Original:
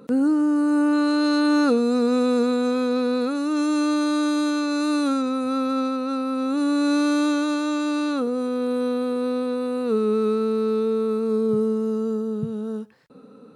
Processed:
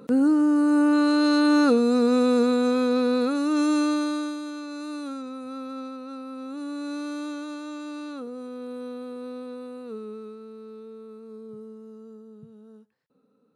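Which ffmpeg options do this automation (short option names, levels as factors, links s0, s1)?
-af "afade=t=out:st=3.71:d=0.68:silence=0.251189,afade=t=out:st=9.59:d=0.77:silence=0.398107"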